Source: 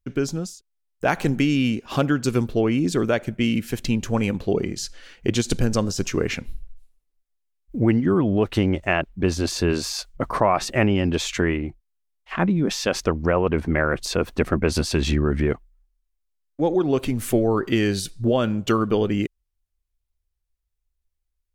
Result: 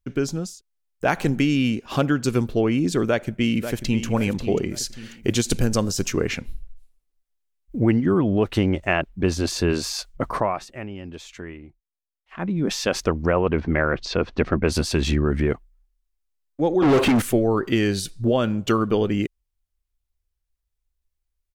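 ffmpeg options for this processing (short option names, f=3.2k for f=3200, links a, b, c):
-filter_complex "[0:a]asplit=2[a][b];[b]afade=t=in:st=3.07:d=0.01,afade=t=out:st=4.04:d=0.01,aecho=0:1:540|1080|1620|2160:0.316228|0.126491|0.0505964|0.0202386[c];[a][c]amix=inputs=2:normalize=0,asettb=1/sr,asplit=3[d][e][f];[d]atrim=end=4.744[g];[e]atrim=start=4.74:end=6.13,asetpts=PTS-STARTPTS,afade=t=in:d=0.004:c=qsin,afade=t=out:st=1.386:d=0.004:c=qsin,highshelf=f=9k:g=9.5[h];[f]atrim=start=6.126[i];[g][h]acrossfade=d=0.004:c1=hsin:c2=qsin[j];[j][i]acrossfade=d=0.004:c1=qsin:c2=hsin,asettb=1/sr,asplit=3[k][l][m];[k]atrim=end=13.334[n];[l]atrim=start=13.33:end=14.64,asetpts=PTS-STARTPTS,afade=t=in:d=0.004:c=qsin,afade=t=out:st=1.306:d=0.004:c=qsin,lowpass=f=5.3k:w=0.5412,lowpass=f=5.3k:w=1.3066[o];[m]atrim=start=14.636[p];[n][o]acrossfade=d=0.004:c1=hsin:c2=qsin[q];[q][p]acrossfade=d=0.004:c1=qsin:c2=hsin,asettb=1/sr,asplit=3[r][s][t];[r]atrim=end=16.824[u];[s]atrim=start=16.82:end=17.22,asetpts=PTS-STARTPTS,afade=t=in:d=0.004:c=qsin,afade=t=out:st=0.396:d=0.004:c=qsin,asplit=2[v][w];[w]highpass=f=720:p=1,volume=35dB,asoftclip=type=tanh:threshold=-9.5dB[x];[v][x]amix=inputs=2:normalize=0,lowpass=f=1.8k:p=1,volume=-6dB[y];[t]atrim=start=17.216[z];[u][y]acrossfade=d=0.004:c1=hsin:c2=qsin[aa];[aa][z]acrossfade=d=0.004:c1=qsin:c2=hsin,asplit=3[ab][ac][ad];[ab]atrim=end=10.67,asetpts=PTS-STARTPTS,afade=t=out:st=10.28:d=0.39:silence=0.177828[ae];[ac]atrim=start=10.67:end=12.31,asetpts=PTS-STARTPTS,volume=-15dB[af];[ad]atrim=start=12.31,asetpts=PTS-STARTPTS,afade=t=in:d=0.39:silence=0.177828[ag];[ae][af][ag]concat=n=3:v=0:a=1"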